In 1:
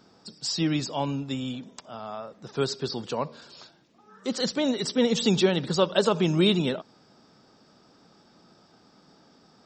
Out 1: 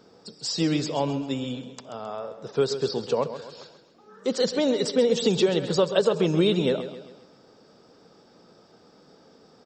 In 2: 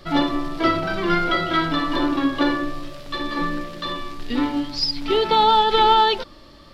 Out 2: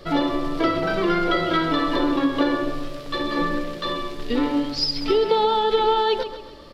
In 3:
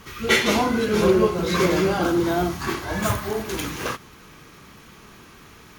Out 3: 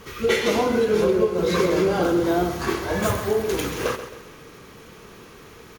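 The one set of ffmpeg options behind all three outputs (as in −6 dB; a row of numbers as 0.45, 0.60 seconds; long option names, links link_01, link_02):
-filter_complex "[0:a]equalizer=frequency=470:width=2.4:gain=9.5,acompressor=threshold=-17dB:ratio=5,asplit=2[link_01][link_02];[link_02]aecho=0:1:133|266|399|532|665:0.266|0.12|0.0539|0.0242|0.0109[link_03];[link_01][link_03]amix=inputs=2:normalize=0"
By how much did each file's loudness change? +1.5, −1.5, 0.0 LU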